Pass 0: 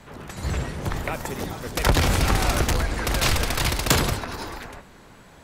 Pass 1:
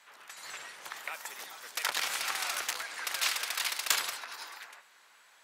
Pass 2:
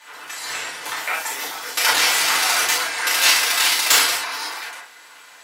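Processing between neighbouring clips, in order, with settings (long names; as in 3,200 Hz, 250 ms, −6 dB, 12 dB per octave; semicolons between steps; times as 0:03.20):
high-pass filter 1,300 Hz 12 dB per octave; level −5.5 dB
soft clipping −16.5 dBFS, distortion −21 dB; convolution reverb, pre-delay 3 ms, DRR −6 dB; level +9 dB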